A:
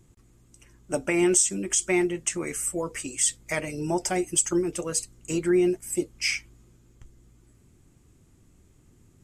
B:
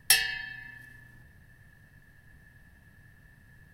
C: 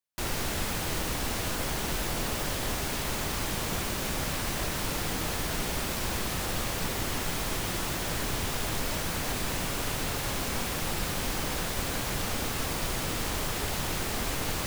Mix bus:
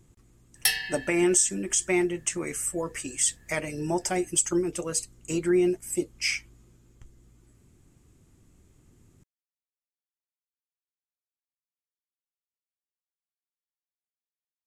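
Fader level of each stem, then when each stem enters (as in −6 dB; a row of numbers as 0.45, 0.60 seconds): −1.0 dB, −2.0 dB, muted; 0.00 s, 0.55 s, muted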